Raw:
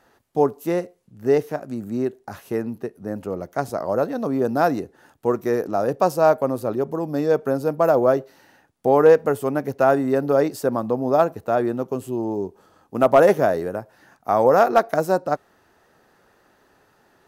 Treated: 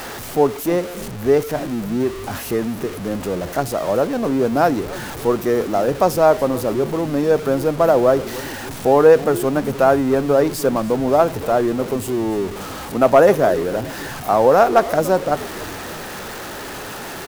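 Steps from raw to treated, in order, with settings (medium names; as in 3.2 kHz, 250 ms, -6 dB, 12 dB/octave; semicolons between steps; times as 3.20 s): jump at every zero crossing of -27.5 dBFS; frequency-shifting echo 289 ms, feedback 53%, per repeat -130 Hz, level -17 dB; trim +2 dB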